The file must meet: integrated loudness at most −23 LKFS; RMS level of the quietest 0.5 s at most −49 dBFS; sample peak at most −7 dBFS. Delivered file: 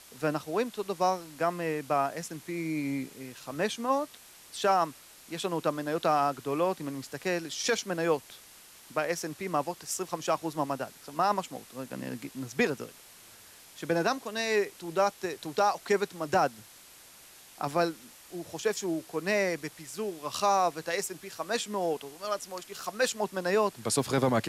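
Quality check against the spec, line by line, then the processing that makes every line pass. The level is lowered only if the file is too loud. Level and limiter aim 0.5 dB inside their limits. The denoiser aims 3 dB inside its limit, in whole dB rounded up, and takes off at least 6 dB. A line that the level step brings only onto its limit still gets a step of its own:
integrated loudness −31.0 LKFS: in spec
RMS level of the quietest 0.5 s −53 dBFS: in spec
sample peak −15.0 dBFS: in spec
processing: no processing needed

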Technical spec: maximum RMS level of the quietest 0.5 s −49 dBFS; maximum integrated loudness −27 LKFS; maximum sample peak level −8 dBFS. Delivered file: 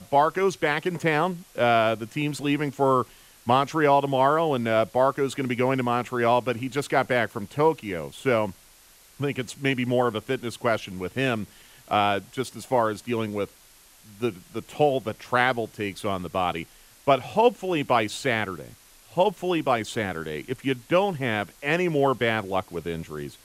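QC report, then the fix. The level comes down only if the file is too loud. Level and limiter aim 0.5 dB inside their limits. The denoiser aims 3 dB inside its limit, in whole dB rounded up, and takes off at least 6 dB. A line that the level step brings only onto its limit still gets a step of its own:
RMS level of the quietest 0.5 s −54 dBFS: in spec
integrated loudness −25.0 LKFS: out of spec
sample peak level −6.5 dBFS: out of spec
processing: level −2.5 dB

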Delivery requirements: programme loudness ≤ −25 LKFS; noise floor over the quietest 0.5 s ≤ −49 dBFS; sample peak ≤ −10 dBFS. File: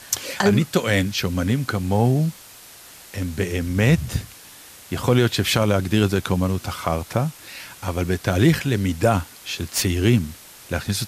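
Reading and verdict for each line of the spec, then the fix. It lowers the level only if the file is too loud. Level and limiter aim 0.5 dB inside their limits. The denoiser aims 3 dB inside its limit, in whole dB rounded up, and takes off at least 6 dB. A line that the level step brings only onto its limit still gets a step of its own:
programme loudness −21.5 LKFS: out of spec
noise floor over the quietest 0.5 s −44 dBFS: out of spec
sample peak −5.0 dBFS: out of spec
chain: broadband denoise 6 dB, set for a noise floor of −44 dBFS
level −4 dB
brickwall limiter −10.5 dBFS

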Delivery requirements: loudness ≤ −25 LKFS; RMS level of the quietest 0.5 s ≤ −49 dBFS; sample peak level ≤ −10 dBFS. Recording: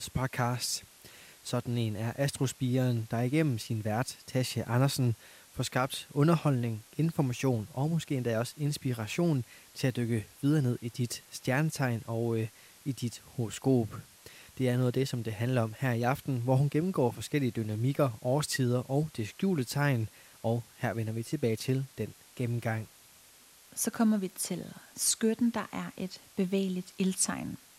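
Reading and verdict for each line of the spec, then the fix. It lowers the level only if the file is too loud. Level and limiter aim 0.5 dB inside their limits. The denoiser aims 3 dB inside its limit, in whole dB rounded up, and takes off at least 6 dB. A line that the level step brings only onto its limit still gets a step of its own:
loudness −31.5 LKFS: in spec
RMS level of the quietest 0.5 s −58 dBFS: in spec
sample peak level −14.0 dBFS: in spec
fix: no processing needed

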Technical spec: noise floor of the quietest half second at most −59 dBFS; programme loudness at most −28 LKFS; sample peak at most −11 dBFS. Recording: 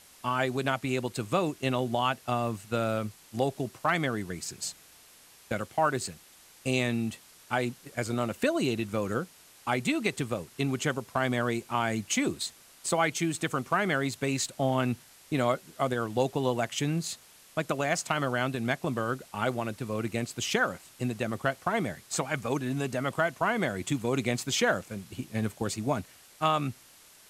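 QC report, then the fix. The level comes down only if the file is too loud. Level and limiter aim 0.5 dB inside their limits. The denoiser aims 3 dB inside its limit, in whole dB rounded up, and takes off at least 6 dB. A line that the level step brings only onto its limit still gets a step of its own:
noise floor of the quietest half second −56 dBFS: out of spec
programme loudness −30.5 LKFS: in spec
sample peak −13.0 dBFS: in spec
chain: broadband denoise 6 dB, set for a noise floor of −56 dBFS

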